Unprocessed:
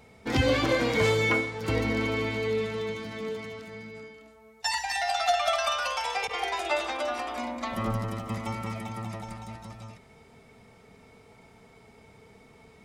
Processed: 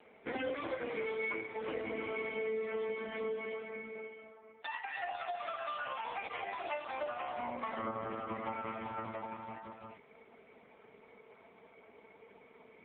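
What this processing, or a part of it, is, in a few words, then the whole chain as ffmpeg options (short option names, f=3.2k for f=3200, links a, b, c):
voicemail: -af "highpass=300,lowpass=3.1k,acompressor=threshold=-34dB:ratio=10,volume=1.5dB" -ar 8000 -c:a libopencore_amrnb -b:a 5150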